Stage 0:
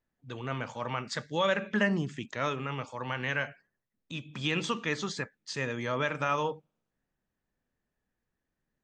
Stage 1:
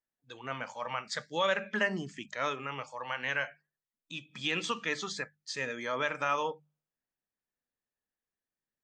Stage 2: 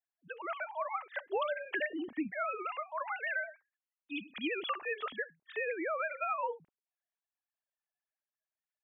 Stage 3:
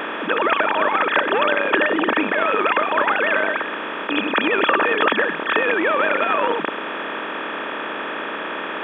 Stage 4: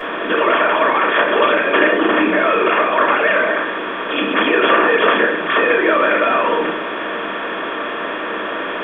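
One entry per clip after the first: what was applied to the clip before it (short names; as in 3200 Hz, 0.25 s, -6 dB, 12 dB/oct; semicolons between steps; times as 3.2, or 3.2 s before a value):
spectral noise reduction 9 dB; low shelf 280 Hz -10 dB; notches 50/100/150/200 Hz
sine-wave speech; compressor 6:1, threshold -35 dBFS, peak gain reduction 13 dB; low shelf 390 Hz +7.5 dB; gain +2 dB
per-bin compression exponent 0.2; gain +9 dB
shoebox room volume 180 m³, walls furnished, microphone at 5.6 m; gain -7 dB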